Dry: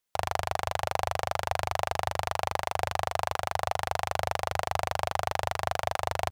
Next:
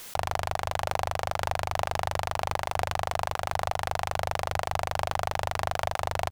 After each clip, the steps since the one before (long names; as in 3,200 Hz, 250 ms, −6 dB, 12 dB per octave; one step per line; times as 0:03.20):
background raised ahead of every attack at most 25 dB per second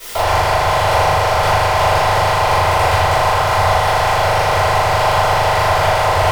convolution reverb RT60 1.2 s, pre-delay 3 ms, DRR −16 dB
level −4 dB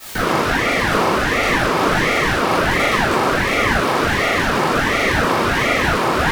ring modulator whose carrier an LFO sweeps 780 Hz, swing 70%, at 1.4 Hz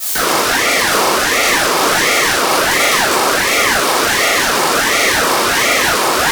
bass and treble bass −12 dB, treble +13 dB
in parallel at −9.5 dB: wrap-around overflow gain 6.5 dB
on the sum: level +1 dB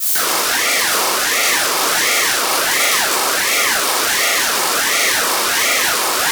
spectral tilt +2 dB per octave
level −5 dB